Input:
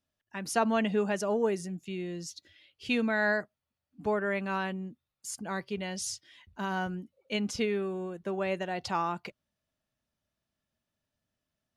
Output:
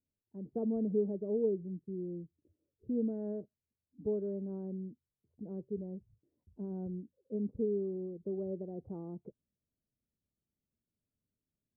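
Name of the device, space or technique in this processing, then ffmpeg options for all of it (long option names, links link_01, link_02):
under water: -af "lowpass=frequency=430:width=0.5412,lowpass=frequency=430:width=1.3066,equalizer=frequency=450:width_type=o:width=0.41:gain=5,volume=-3.5dB"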